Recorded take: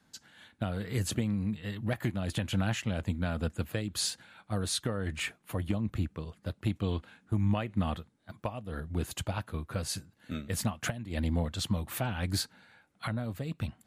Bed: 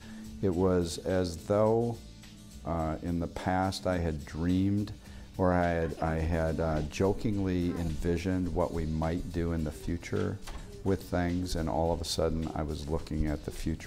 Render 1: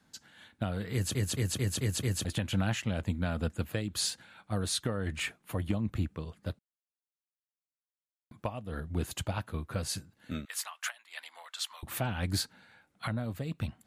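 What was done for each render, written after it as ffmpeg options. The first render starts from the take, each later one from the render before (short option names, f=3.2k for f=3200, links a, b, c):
-filter_complex "[0:a]asettb=1/sr,asplit=3[a][b][c];[a]atrim=end=10.454[d];[b]atrim=start=10.45:end=11.83,asetpts=PTS-STARTPTS,afade=t=in:d=0.004:c=qsin,afade=t=out:st=1.376:d=0.004:c=qsin,highpass=f=1k:w=0.5412,highpass=f=1k:w=1.3066[e];[c]atrim=start=11.826[f];[d][e]acrossfade=d=0.004:c1=hsin:c2=qsin[g];[g][f]acrossfade=d=0.004:c1=qsin:c2=hsin,asplit=9[h][i][j][k][l][m][n][o][p];[h]atrim=end=1.152[q];[i]atrim=start=0.928:end=1.152[r];[j]atrim=start=0.928:end=1.152[s];[k]atrim=start=0.928:end=1.152[t];[l]atrim=start=0.928:end=1.152[u];[m]atrim=start=0.928:end=1.152[v];[n]atrim=start=2.248:end=6.59,asetpts=PTS-STARTPTS,afade=t=out:st=4.338:d=0.004:c=hsin[w];[o]atrim=start=6.59:end=8.31,asetpts=PTS-STARTPTS,volume=0[x];[p]atrim=start=8.31,asetpts=PTS-STARTPTS,afade=t=in:d=0.004:c=hsin[y];[q][r]acrossfade=d=0.004:c1=hsin:c2=hsin[z];[z][s]acrossfade=d=0.004:c1=hsin:c2=hsin[aa];[aa][t]acrossfade=d=0.004:c1=hsin:c2=hsin[ab];[ab][u]acrossfade=d=0.004:c1=hsin:c2=hsin[ac];[ac][v]acrossfade=d=0.004:c1=hsin:c2=hsin[ad];[w][x][y]concat=n=3:v=0:a=1[ae];[ad][ae]acrossfade=d=0.004:c1=hsin:c2=hsin"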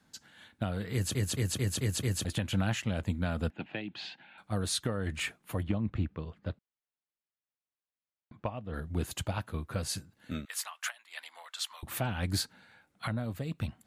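-filter_complex "[0:a]asettb=1/sr,asplit=3[a][b][c];[a]atrim=end=3.504[d];[b]atrim=start=3.5:end=4.38,asetpts=PTS-STARTPTS,afade=t=in:d=0.004:c=qsin,afade=t=out:st=0.876:d=0.004:c=qsin,highpass=f=160:w=0.5412,highpass=f=160:w=1.3066,equalizer=f=210:t=q:w=4:g=-4,equalizer=f=480:t=q:w=4:g=-10,equalizer=f=800:t=q:w=4:g=7,equalizer=f=1.2k:t=q:w=4:g=-9,equalizer=f=2.6k:t=q:w=4:g=5,lowpass=f=3.3k:w=0.5412,lowpass=f=3.3k:w=1.3066[e];[c]atrim=start=4.376[f];[d][e]acrossfade=d=0.004:c1=hsin:c2=qsin[g];[g][f]acrossfade=d=0.004:c1=qsin:c2=hsin,asettb=1/sr,asplit=3[h][i][j];[h]atrim=end=5.634[k];[i]atrim=start=5.63:end=8.74,asetpts=PTS-STARTPTS,afade=t=in:d=0.004:c=qsin,afade=t=out:st=3.106:d=0.004:c=qsin,lowpass=3.3k[l];[j]atrim=start=8.736[m];[k][l]acrossfade=d=0.004:c1=hsin:c2=qsin[n];[n][m]acrossfade=d=0.004:c1=qsin:c2=hsin"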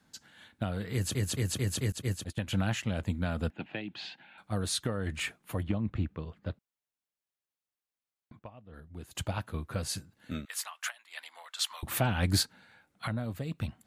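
-filter_complex "[0:a]asettb=1/sr,asplit=3[a][b][c];[a]atrim=end=1.924[d];[b]atrim=start=1.92:end=2.47,asetpts=PTS-STARTPTS,afade=t=in:d=0.004:c=qsin,afade=t=out:st=0.546:d=0.004:c=qsin,agate=range=-33dB:threshold=-29dB:ratio=3:release=100:detection=peak[e];[c]atrim=start=2.466[f];[d][e]acrossfade=d=0.004:c1=hsin:c2=qsin[g];[g][f]acrossfade=d=0.004:c1=qsin:c2=hsin,asplit=5[h][i][j][k][l];[h]atrim=end=8.392[m];[i]atrim=start=8.388:end=9.152,asetpts=PTS-STARTPTS,volume=-12dB[n];[j]atrim=start=9.148:end=11.592[o];[k]atrim=start=11.588:end=12.432,asetpts=PTS-STARTPTS,volume=4.5dB[p];[l]atrim=start=12.428[q];[m][n]acrossfade=d=0.004:c1=hsin:c2=hsin[r];[r][o]acrossfade=d=0.004:c1=hsin:c2=hsin[s];[s][p]acrossfade=d=0.004:c1=hsin:c2=hsin[t];[t][q]acrossfade=d=0.004:c1=hsin:c2=hsin"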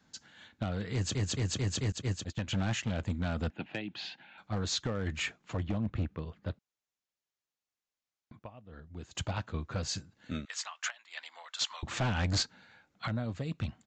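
-af "crystalizer=i=0.5:c=0,aresample=16000,asoftclip=type=hard:threshold=-26dB,aresample=44100"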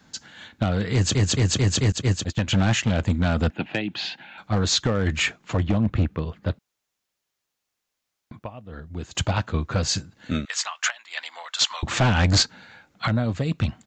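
-af "volume=11.5dB"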